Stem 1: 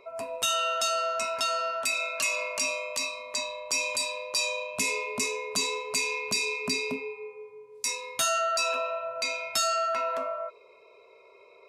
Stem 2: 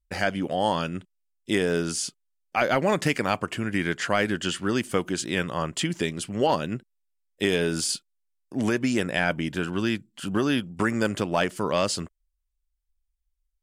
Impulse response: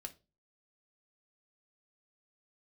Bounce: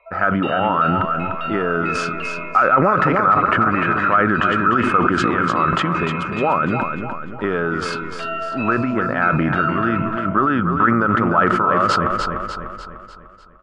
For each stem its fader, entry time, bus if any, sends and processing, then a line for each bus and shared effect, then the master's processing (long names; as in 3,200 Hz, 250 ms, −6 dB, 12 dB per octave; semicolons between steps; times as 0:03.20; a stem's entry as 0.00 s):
+1.0 dB, 0.00 s, no send, no echo send, elliptic band-pass filter 600–2,800 Hz, stop band 40 dB
+1.5 dB, 0.00 s, no send, echo send −8 dB, low-pass with resonance 1,300 Hz, resonance Q 15; level that may fall only so fast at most 30 dB per second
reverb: not used
echo: repeating echo 298 ms, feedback 48%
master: downward compressor 3 to 1, threshold −13 dBFS, peak gain reduction 8 dB